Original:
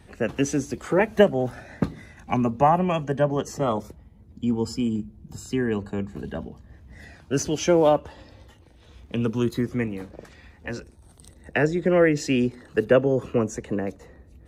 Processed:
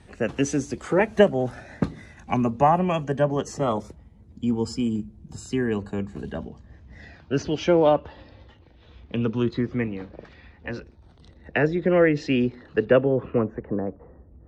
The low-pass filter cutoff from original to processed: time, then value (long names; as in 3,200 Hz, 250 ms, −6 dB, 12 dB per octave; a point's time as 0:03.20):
low-pass filter 24 dB per octave
0:06.22 9,900 Hz
0:07.33 4,500 Hz
0:12.78 4,500 Hz
0:13.27 2,600 Hz
0:13.78 1,300 Hz